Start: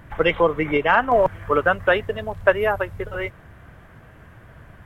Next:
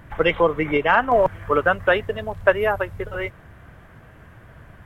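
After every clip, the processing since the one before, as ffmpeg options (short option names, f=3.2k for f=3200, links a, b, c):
-af anull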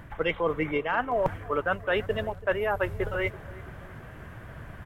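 -filter_complex "[0:a]areverse,acompressor=threshold=-27dB:ratio=5,areverse,asplit=2[a][b];[b]adelay=332,lowpass=f=1.1k:p=1,volume=-18dB,asplit=2[c][d];[d]adelay=332,lowpass=f=1.1k:p=1,volume=0.53,asplit=2[e][f];[f]adelay=332,lowpass=f=1.1k:p=1,volume=0.53,asplit=2[g][h];[h]adelay=332,lowpass=f=1.1k:p=1,volume=0.53[i];[a][c][e][g][i]amix=inputs=5:normalize=0,volume=2.5dB"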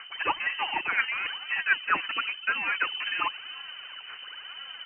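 -filter_complex "[0:a]acrossover=split=930[a][b];[a]aeval=exprs='0.0398*(abs(mod(val(0)/0.0398+3,4)-2)-1)':c=same[c];[b]aphaser=in_gain=1:out_gain=1:delay=3.5:decay=0.75:speed=0.97:type=sinusoidal[d];[c][d]amix=inputs=2:normalize=0,lowpass=f=2.6k:t=q:w=0.5098,lowpass=f=2.6k:t=q:w=0.6013,lowpass=f=2.6k:t=q:w=0.9,lowpass=f=2.6k:t=q:w=2.563,afreqshift=-3100"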